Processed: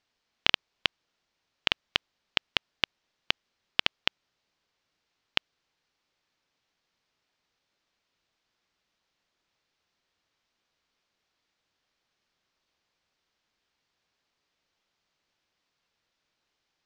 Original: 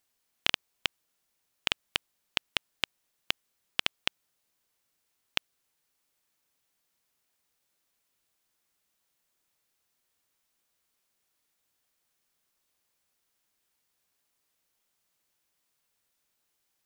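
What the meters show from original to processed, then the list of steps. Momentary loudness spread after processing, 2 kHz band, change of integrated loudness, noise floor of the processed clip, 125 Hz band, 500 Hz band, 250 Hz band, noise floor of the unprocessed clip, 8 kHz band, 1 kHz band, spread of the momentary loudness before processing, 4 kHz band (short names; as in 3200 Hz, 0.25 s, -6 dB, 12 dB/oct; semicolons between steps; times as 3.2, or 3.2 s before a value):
5 LU, +3.5 dB, +3.5 dB, -81 dBFS, +3.5 dB, +3.5 dB, +3.5 dB, -78 dBFS, -5.0 dB, +3.5 dB, 5 LU, +3.5 dB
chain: LPF 5300 Hz 24 dB/oct; gain +3.5 dB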